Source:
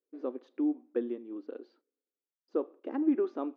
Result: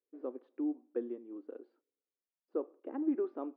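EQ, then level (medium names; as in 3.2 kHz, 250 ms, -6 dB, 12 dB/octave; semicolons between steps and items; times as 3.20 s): high-pass 250 Hz; distance through air 210 m; treble shelf 2.5 kHz -11 dB; -3.0 dB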